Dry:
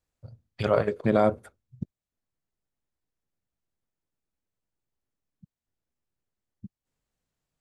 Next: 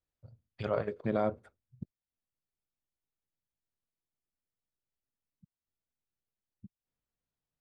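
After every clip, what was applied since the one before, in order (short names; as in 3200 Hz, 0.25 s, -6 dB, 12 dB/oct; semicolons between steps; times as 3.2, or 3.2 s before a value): air absorption 87 m; gain -8.5 dB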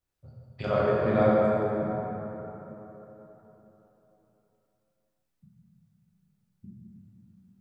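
plate-style reverb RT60 3.8 s, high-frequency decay 0.5×, DRR -7 dB; gain +2 dB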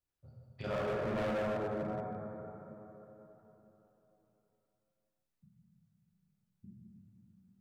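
hard clip -25 dBFS, distortion -8 dB; gain -7 dB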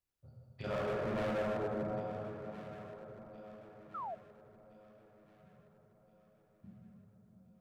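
echo with dull and thin repeats by turns 0.684 s, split 810 Hz, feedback 64%, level -10 dB; painted sound fall, 3.94–4.15, 610–1400 Hz -40 dBFS; gain -1 dB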